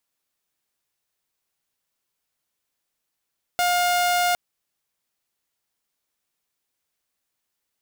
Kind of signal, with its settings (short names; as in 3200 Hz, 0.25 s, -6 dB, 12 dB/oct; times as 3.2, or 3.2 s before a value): tone saw 710 Hz -16 dBFS 0.76 s